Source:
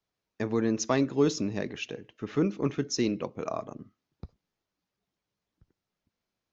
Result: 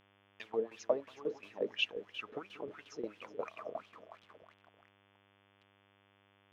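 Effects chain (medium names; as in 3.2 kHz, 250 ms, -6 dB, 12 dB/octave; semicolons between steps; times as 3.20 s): compression 12:1, threshold -29 dBFS, peak gain reduction 11.5 dB; echo whose repeats swap between lows and highs 184 ms, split 1.2 kHz, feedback 65%, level -8 dB; bit crusher 9-bit; wah-wah 2.9 Hz 450–3200 Hz, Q 5.9; tremolo saw down 5.6 Hz, depth 80%; mains buzz 100 Hz, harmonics 35, -80 dBFS -2 dB/octave; trim +11 dB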